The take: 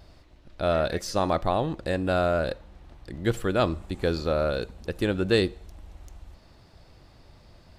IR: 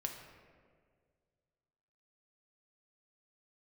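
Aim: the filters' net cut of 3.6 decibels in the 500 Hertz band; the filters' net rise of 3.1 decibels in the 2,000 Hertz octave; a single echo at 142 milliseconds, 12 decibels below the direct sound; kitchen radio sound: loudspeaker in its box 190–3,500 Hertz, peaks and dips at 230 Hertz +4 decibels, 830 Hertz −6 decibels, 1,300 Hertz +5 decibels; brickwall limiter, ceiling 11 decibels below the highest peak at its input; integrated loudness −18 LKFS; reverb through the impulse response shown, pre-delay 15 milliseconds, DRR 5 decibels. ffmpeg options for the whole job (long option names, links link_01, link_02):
-filter_complex "[0:a]equalizer=frequency=500:width_type=o:gain=-4,equalizer=frequency=2000:width_type=o:gain=3,alimiter=limit=-20dB:level=0:latency=1,aecho=1:1:142:0.251,asplit=2[link_01][link_02];[1:a]atrim=start_sample=2205,adelay=15[link_03];[link_02][link_03]afir=irnorm=-1:irlink=0,volume=-4.5dB[link_04];[link_01][link_04]amix=inputs=2:normalize=0,highpass=190,equalizer=frequency=230:width_type=q:width=4:gain=4,equalizer=frequency=830:width_type=q:width=4:gain=-6,equalizer=frequency=1300:width_type=q:width=4:gain=5,lowpass=frequency=3500:width=0.5412,lowpass=frequency=3500:width=1.3066,volume=14dB"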